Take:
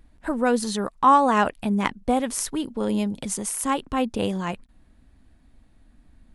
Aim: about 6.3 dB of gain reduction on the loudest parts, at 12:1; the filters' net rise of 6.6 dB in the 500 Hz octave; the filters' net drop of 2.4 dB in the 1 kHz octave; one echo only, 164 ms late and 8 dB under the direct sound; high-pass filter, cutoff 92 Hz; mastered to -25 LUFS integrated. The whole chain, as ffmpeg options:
-af "highpass=92,equalizer=f=500:t=o:g=8.5,equalizer=f=1000:t=o:g=-5.5,acompressor=threshold=0.126:ratio=12,aecho=1:1:164:0.398"

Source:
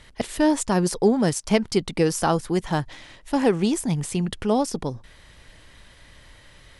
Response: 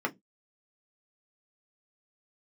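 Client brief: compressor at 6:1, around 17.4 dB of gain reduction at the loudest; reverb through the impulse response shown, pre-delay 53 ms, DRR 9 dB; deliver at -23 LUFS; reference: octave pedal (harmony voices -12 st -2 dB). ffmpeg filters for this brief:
-filter_complex "[0:a]acompressor=threshold=0.02:ratio=6,asplit=2[s0][s1];[1:a]atrim=start_sample=2205,adelay=53[s2];[s1][s2]afir=irnorm=-1:irlink=0,volume=0.15[s3];[s0][s3]amix=inputs=2:normalize=0,asplit=2[s4][s5];[s5]asetrate=22050,aresample=44100,atempo=2,volume=0.794[s6];[s4][s6]amix=inputs=2:normalize=0,volume=4.22"

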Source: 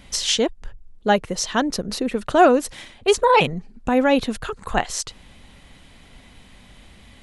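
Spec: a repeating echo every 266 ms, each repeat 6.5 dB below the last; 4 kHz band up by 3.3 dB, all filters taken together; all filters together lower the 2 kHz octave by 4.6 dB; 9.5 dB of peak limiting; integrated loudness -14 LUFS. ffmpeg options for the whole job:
-af "equalizer=f=2000:t=o:g=-9,equalizer=f=4000:t=o:g=7.5,alimiter=limit=0.224:level=0:latency=1,aecho=1:1:266|532|798|1064|1330|1596:0.473|0.222|0.105|0.0491|0.0231|0.0109,volume=3.16"

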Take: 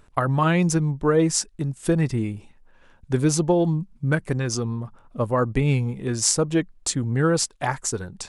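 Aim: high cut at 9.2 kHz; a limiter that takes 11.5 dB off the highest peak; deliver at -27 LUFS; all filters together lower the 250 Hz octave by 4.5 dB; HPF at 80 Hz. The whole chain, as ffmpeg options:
-af "highpass=80,lowpass=9200,equalizer=f=250:t=o:g=-7.5,volume=1.06,alimiter=limit=0.158:level=0:latency=1"

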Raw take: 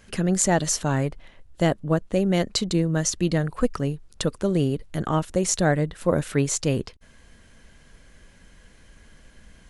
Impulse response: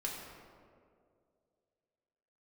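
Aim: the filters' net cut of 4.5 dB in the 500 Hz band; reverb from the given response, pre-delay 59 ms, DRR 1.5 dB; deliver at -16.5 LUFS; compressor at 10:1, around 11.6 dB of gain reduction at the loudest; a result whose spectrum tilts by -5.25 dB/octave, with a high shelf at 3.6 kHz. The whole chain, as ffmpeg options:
-filter_complex "[0:a]equalizer=f=500:t=o:g=-5.5,highshelf=f=3600:g=-8,acompressor=threshold=0.0355:ratio=10,asplit=2[s0][s1];[1:a]atrim=start_sample=2205,adelay=59[s2];[s1][s2]afir=irnorm=-1:irlink=0,volume=0.708[s3];[s0][s3]amix=inputs=2:normalize=0,volume=6.68"

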